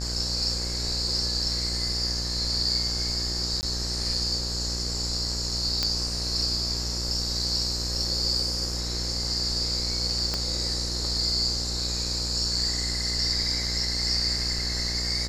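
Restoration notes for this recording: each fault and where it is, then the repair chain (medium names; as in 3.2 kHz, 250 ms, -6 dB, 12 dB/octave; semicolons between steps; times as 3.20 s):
buzz 60 Hz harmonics 28 -33 dBFS
3.61–3.63 s: dropout 19 ms
5.83 s: pop -10 dBFS
10.34 s: pop -13 dBFS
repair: de-click; de-hum 60 Hz, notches 28; interpolate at 3.61 s, 19 ms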